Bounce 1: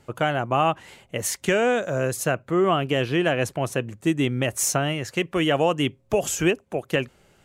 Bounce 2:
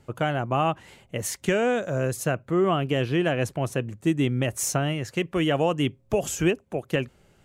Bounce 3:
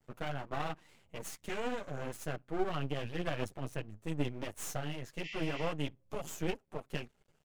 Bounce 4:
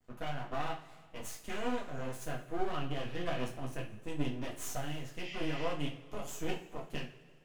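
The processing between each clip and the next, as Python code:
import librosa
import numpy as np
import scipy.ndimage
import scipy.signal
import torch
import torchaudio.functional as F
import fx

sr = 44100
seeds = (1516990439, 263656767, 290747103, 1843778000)

y1 = fx.low_shelf(x, sr, hz=310.0, db=6.0)
y1 = F.gain(torch.from_numpy(y1), -4.0).numpy()
y2 = fx.chorus_voices(y1, sr, voices=4, hz=1.1, base_ms=10, depth_ms=3.7, mix_pct=55)
y2 = np.maximum(y2, 0.0)
y2 = fx.spec_repair(y2, sr, seeds[0], start_s=5.26, length_s=0.44, low_hz=1800.0, high_hz=7400.0, source='before')
y2 = F.gain(torch.from_numpy(y2), -7.0).numpy()
y3 = fx.rev_double_slope(y2, sr, seeds[1], early_s=0.32, late_s=1.8, knee_db=-18, drr_db=-0.5)
y3 = F.gain(torch.from_numpy(y3), -3.5).numpy()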